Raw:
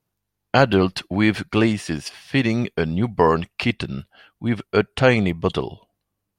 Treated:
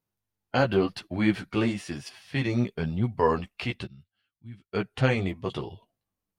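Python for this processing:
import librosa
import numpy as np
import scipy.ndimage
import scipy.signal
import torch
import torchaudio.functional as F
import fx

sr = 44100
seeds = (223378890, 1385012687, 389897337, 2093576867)

y = fx.chorus_voices(x, sr, voices=2, hz=0.96, base_ms=12, depth_ms=4.3, mix_pct=40)
y = fx.hpss(y, sr, part='harmonic', gain_db=5)
y = fx.tone_stack(y, sr, knobs='6-0-2', at=(3.86, 4.72), fade=0.02)
y = F.gain(torch.from_numpy(y), -7.5).numpy()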